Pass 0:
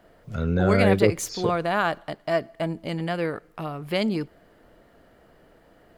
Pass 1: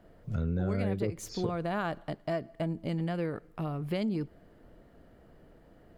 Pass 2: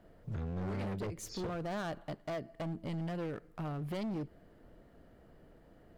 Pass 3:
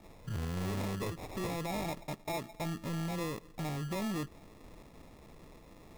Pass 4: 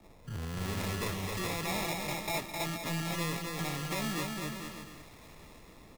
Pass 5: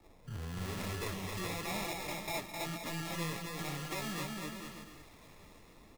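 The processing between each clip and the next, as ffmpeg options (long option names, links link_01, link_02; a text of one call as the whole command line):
ffmpeg -i in.wav -af "lowshelf=frequency=400:gain=11,acompressor=threshold=-20dB:ratio=5,volume=-8dB" out.wav
ffmpeg -i in.wav -af "volume=32dB,asoftclip=hard,volume=-32dB,volume=-2.5dB" out.wav
ffmpeg -i in.wav -filter_complex "[0:a]asplit=2[link_01][link_02];[link_02]alimiter=level_in=20dB:limit=-24dB:level=0:latency=1:release=86,volume=-20dB,volume=0dB[link_03];[link_01][link_03]amix=inputs=2:normalize=0,acrusher=samples=29:mix=1:aa=0.000001,volume=-1dB" out.wav
ffmpeg -i in.wav -filter_complex "[0:a]acrossover=split=110|1200[link_01][link_02][link_03];[link_03]dynaudnorm=framelen=110:gausssize=11:maxgain=8.5dB[link_04];[link_01][link_02][link_04]amix=inputs=3:normalize=0,aecho=1:1:260|455|601.2|710.9|793.2:0.631|0.398|0.251|0.158|0.1,volume=-2dB" out.wav
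ffmpeg -i in.wav -af "flanger=delay=2.3:depth=8.4:regen=-45:speed=1:shape=sinusoidal" out.wav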